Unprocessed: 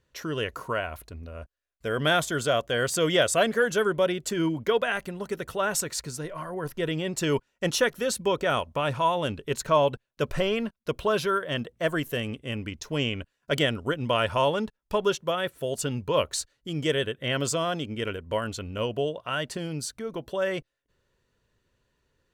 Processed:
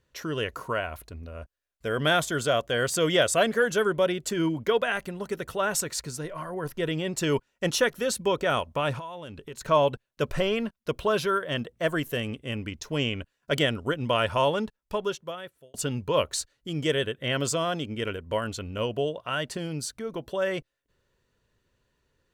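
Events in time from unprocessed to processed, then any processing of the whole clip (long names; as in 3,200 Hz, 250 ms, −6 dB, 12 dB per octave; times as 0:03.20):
0:08.99–0:09.61: downward compressor 5 to 1, threshold −37 dBFS
0:14.58–0:15.74: fade out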